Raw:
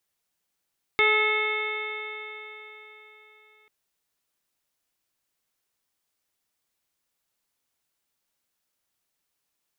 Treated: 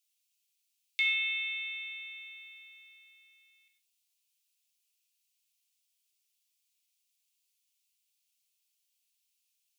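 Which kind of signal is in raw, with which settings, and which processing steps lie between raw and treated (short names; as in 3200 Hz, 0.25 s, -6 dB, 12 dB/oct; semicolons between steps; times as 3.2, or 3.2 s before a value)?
stretched partials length 2.69 s, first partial 426 Hz, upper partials -6.5/-2/-10/5.5/-8/-15.5/-5 dB, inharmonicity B 0.0017, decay 3.94 s, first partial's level -24 dB
Chebyshev high-pass 2500 Hz, order 4; non-linear reverb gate 0.18 s falling, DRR 3 dB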